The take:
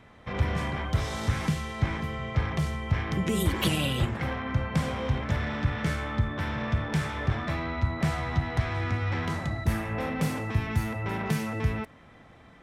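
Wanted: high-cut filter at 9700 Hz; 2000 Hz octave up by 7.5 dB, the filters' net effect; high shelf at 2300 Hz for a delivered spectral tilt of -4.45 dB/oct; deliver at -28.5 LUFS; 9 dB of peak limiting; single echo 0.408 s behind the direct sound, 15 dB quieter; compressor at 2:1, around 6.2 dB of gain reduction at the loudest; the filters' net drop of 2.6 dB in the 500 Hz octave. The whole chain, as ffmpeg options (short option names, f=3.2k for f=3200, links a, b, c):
-af "lowpass=9.7k,equalizer=f=500:t=o:g=-4,equalizer=f=2k:t=o:g=5,highshelf=f=2.3k:g=8,acompressor=threshold=-31dB:ratio=2,alimiter=limit=-23.5dB:level=0:latency=1,aecho=1:1:408:0.178,volume=4dB"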